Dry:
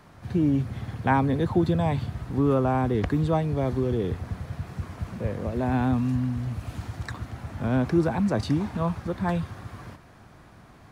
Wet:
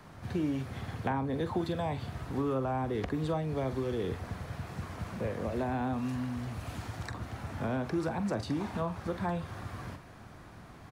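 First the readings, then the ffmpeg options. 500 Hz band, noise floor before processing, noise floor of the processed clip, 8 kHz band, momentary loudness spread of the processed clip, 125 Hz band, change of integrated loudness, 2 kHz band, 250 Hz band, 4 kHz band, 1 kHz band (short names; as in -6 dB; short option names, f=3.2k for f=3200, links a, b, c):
-6.5 dB, -51 dBFS, -51 dBFS, n/a, 9 LU, -9.5 dB, -8.5 dB, -6.0 dB, -8.5 dB, -3.5 dB, -6.5 dB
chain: -filter_complex "[0:a]acrossover=split=330|970[a][b][c];[a]acompressor=threshold=-37dB:ratio=4[d];[b]acompressor=threshold=-34dB:ratio=4[e];[c]acompressor=threshold=-43dB:ratio=4[f];[d][e][f]amix=inputs=3:normalize=0,asplit=2[g][h];[h]adelay=45,volume=-12dB[i];[g][i]amix=inputs=2:normalize=0"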